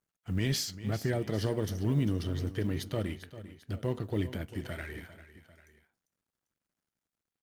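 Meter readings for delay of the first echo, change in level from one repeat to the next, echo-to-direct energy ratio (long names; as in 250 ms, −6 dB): 397 ms, −5.0 dB, −13.5 dB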